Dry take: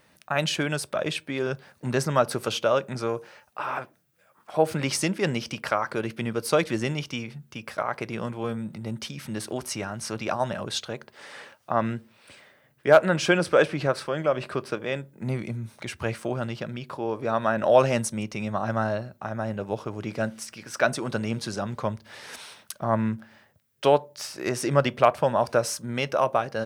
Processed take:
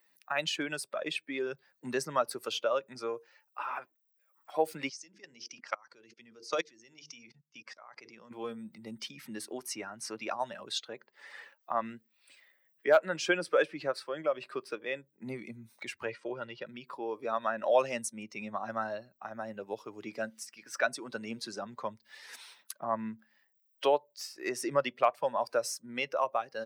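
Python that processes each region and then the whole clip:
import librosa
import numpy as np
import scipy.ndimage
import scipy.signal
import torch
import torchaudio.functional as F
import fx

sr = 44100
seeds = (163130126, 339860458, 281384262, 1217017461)

y = fx.chain(x, sr, fx.hum_notches(base_hz=50, count=9),
    fx.level_steps(step_db=22),
    fx.lowpass_res(hz=6200.0, q=2.8), at=(4.89, 8.31))
y = fx.chain(y, sr, fx.lowpass(hz=4800.0, slope=12),
    fx.comb(ms=2.1, depth=0.35), at=(16.06, 16.66))
y = fx.bin_expand(y, sr, power=1.5)
y = scipy.signal.sosfilt(scipy.signal.butter(2, 350.0, 'highpass', fs=sr, output='sos'), y)
y = fx.band_squash(y, sr, depth_pct=40)
y = y * librosa.db_to_amplitude(-1.5)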